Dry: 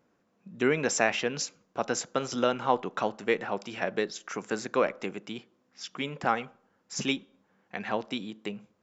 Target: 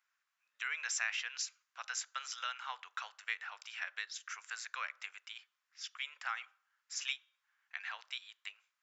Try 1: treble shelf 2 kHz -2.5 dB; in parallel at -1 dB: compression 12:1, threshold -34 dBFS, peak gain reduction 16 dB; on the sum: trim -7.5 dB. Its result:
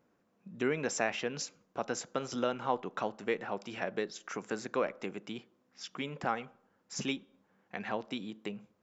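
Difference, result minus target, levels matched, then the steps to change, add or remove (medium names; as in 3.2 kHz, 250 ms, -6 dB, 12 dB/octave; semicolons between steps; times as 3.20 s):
1 kHz band +3.5 dB
add first: high-pass 1.4 kHz 24 dB/octave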